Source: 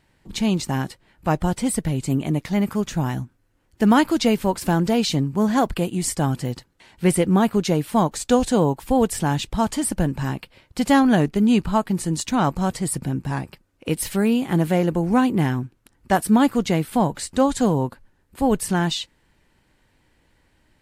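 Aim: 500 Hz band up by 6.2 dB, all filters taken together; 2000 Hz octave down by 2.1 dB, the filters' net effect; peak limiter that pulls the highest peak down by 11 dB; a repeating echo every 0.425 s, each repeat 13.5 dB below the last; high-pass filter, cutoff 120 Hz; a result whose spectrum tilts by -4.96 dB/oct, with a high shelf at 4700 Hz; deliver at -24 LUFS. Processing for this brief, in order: HPF 120 Hz; bell 500 Hz +7.5 dB; bell 2000 Hz -4.5 dB; high shelf 4700 Hz +7 dB; limiter -12 dBFS; feedback echo 0.425 s, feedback 21%, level -13.5 dB; gain -1.5 dB

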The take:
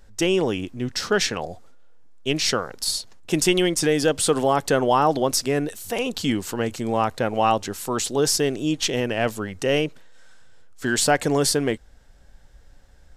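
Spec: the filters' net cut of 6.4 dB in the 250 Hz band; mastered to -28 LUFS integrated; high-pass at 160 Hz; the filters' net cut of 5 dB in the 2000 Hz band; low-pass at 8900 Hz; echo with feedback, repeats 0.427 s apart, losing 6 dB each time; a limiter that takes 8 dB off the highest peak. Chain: HPF 160 Hz; LPF 8900 Hz; bell 250 Hz -8 dB; bell 2000 Hz -7 dB; limiter -16 dBFS; feedback echo 0.427 s, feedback 50%, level -6 dB; gain -1 dB

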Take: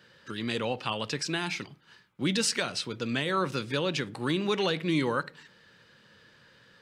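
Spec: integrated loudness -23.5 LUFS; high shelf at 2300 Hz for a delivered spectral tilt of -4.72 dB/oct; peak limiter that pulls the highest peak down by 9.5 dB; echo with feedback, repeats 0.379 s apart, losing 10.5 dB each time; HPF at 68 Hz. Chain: HPF 68 Hz; high shelf 2300 Hz -6 dB; limiter -25 dBFS; feedback echo 0.379 s, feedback 30%, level -10.5 dB; gain +12 dB

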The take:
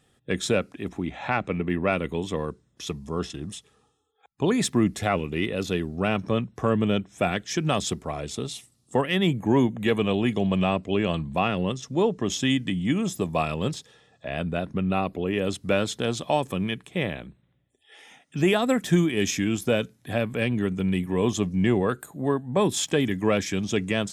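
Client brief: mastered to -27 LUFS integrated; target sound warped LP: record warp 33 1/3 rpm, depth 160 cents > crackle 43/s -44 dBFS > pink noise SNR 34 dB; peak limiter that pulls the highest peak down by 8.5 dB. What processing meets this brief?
limiter -18.5 dBFS; record warp 33 1/3 rpm, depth 160 cents; crackle 43/s -44 dBFS; pink noise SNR 34 dB; gain +2.5 dB

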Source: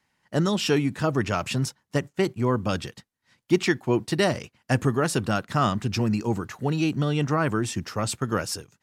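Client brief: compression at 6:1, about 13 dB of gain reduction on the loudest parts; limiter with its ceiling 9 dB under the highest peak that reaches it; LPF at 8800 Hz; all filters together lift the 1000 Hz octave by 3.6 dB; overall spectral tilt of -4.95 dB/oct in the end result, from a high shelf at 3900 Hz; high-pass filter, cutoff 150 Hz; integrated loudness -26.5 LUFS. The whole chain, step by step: HPF 150 Hz; LPF 8800 Hz; bell 1000 Hz +5.5 dB; high shelf 3900 Hz -8 dB; compressor 6:1, threshold -29 dBFS; gain +9.5 dB; limiter -13 dBFS

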